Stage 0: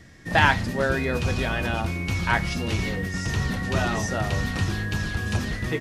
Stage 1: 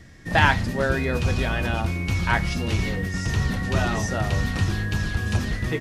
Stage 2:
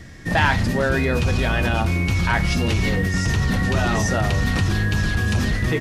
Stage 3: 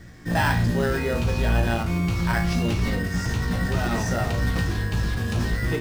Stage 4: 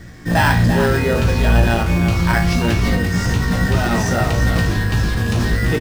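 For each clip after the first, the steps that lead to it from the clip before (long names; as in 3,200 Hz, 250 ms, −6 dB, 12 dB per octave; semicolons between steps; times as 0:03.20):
low-shelf EQ 97 Hz +5.5 dB
in parallel at −1 dB: compressor whose output falls as the input rises −26 dBFS; on the sum: soft clipping −7 dBFS, distortion −25 dB
tuned comb filter 58 Hz, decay 0.32 s, harmonics all, mix 90%; in parallel at −6 dB: decimation without filtering 13×
single-tap delay 341 ms −9 dB; level +7 dB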